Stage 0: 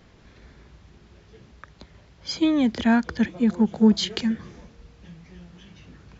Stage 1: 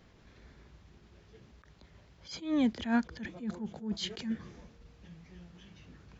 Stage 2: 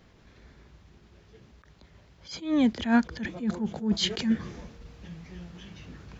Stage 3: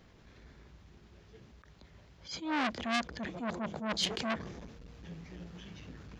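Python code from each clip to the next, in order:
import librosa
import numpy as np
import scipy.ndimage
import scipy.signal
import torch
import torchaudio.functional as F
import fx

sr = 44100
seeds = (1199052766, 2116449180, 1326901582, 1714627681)

y1 = fx.attack_slew(x, sr, db_per_s=140.0)
y1 = F.gain(torch.from_numpy(y1), -6.5).numpy()
y2 = fx.rider(y1, sr, range_db=10, speed_s=2.0)
y2 = F.gain(torch.from_numpy(y2), 7.0).numpy()
y3 = fx.transformer_sat(y2, sr, knee_hz=2900.0)
y3 = F.gain(torch.from_numpy(y3), -1.5).numpy()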